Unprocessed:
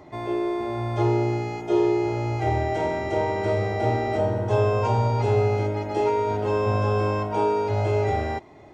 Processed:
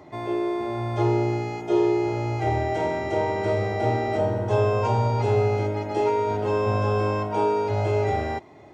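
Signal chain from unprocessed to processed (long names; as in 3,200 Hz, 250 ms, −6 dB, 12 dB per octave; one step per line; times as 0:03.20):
high-pass filter 73 Hz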